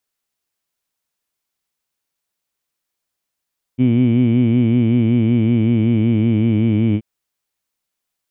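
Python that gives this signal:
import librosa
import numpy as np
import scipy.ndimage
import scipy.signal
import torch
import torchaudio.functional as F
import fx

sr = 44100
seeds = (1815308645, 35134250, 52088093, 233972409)

y = fx.vowel(sr, seeds[0], length_s=3.23, word='heed', hz=122.0, glide_st=-2.0, vibrato_hz=5.3, vibrato_st=0.9)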